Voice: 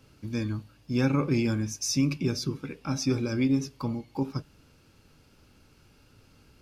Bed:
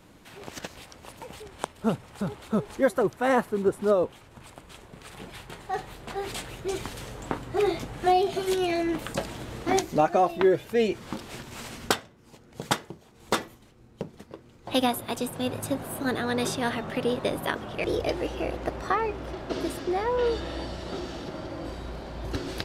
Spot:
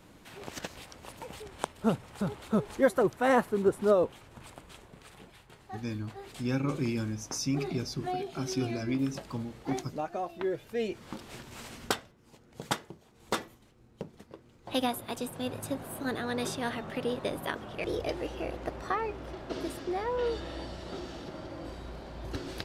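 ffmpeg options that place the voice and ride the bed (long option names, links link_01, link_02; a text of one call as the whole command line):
ffmpeg -i stem1.wav -i stem2.wav -filter_complex "[0:a]adelay=5500,volume=-5.5dB[link_01];[1:a]volume=6dB,afade=type=out:start_time=4.48:duration=0.89:silence=0.266073,afade=type=in:start_time=10.26:duration=1.1:silence=0.421697[link_02];[link_01][link_02]amix=inputs=2:normalize=0" out.wav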